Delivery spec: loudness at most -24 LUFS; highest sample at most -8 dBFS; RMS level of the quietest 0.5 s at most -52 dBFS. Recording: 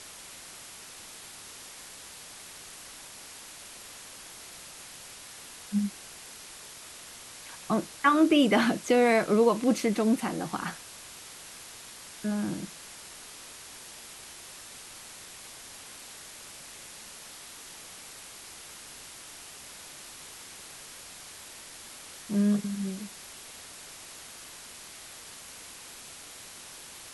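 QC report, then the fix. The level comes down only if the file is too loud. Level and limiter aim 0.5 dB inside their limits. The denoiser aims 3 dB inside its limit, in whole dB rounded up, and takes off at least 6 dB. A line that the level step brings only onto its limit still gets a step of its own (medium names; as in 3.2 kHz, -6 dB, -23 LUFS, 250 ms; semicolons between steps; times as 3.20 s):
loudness -27.0 LUFS: pass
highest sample -11.0 dBFS: pass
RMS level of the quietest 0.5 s -46 dBFS: fail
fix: noise reduction 9 dB, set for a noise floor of -46 dBFS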